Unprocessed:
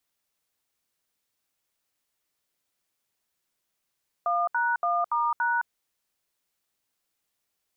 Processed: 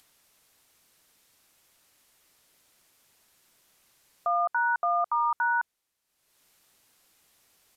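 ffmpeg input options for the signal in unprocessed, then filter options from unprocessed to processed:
-f lavfi -i "aevalsrc='0.0562*clip(min(mod(t,0.285),0.214-mod(t,0.285))/0.002,0,1)*(eq(floor(t/0.285),0)*(sin(2*PI*697*mod(t,0.285))+sin(2*PI*1209*mod(t,0.285)))+eq(floor(t/0.285),1)*(sin(2*PI*941*mod(t,0.285))+sin(2*PI*1477*mod(t,0.285)))+eq(floor(t/0.285),2)*(sin(2*PI*697*mod(t,0.285))+sin(2*PI*1209*mod(t,0.285)))+eq(floor(t/0.285),3)*(sin(2*PI*941*mod(t,0.285))+sin(2*PI*1209*mod(t,0.285)))+eq(floor(t/0.285),4)*(sin(2*PI*941*mod(t,0.285))+sin(2*PI*1477*mod(t,0.285))))':d=1.425:s=44100"
-af "acompressor=mode=upward:threshold=0.00355:ratio=2.5,aresample=32000,aresample=44100"

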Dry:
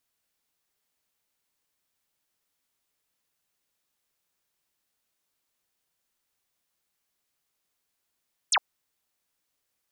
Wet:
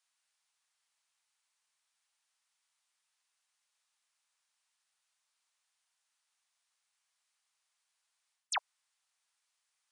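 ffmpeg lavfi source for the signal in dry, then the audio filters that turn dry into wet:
-f lavfi -i "aevalsrc='0.112*clip(t/0.002,0,1)*clip((0.06-t)/0.002,0,1)*sin(2*PI*9700*0.06/log(650/9700)*(exp(log(650/9700)*t/0.06)-1))':d=0.06:s=44100"
-af "highpass=f=790:w=0.5412,highpass=f=790:w=1.3066,areverse,acompressor=threshold=0.0251:ratio=10,areverse" -ar 22050 -c:a libvorbis -b:a 64k

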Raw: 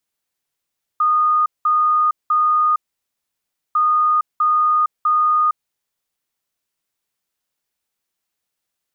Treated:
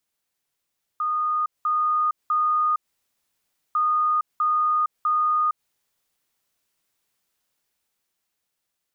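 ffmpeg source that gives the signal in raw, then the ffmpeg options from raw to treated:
-f lavfi -i "aevalsrc='0.237*sin(2*PI*1230*t)*clip(min(mod(mod(t,2.75),0.65),0.46-mod(mod(t,2.75),0.65))/0.005,0,1)*lt(mod(t,2.75),1.95)':d=5.5:s=44100"
-af "alimiter=limit=0.075:level=0:latency=1:release=118,dynaudnorm=f=260:g=11:m=1.68"

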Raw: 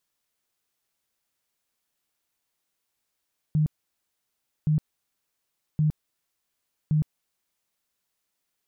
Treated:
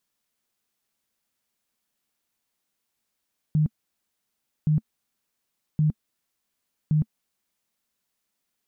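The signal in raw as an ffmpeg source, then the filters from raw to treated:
-f lavfi -i "aevalsrc='0.119*sin(2*PI*153*mod(t,1.12))*lt(mod(t,1.12),17/153)':d=4.48:s=44100"
-af "equalizer=f=220:t=o:w=0.46:g=7"

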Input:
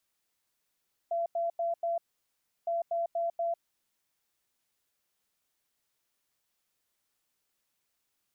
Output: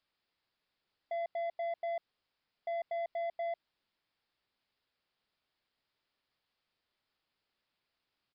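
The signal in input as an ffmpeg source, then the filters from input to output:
-f lavfi -i "aevalsrc='0.0422*sin(2*PI*678*t)*clip(min(mod(mod(t,1.56),0.24),0.15-mod(mod(t,1.56),0.24))/0.005,0,1)*lt(mod(t,1.56),0.96)':d=3.12:s=44100"
-af "asoftclip=type=tanh:threshold=0.0224,aresample=11025,aresample=44100"

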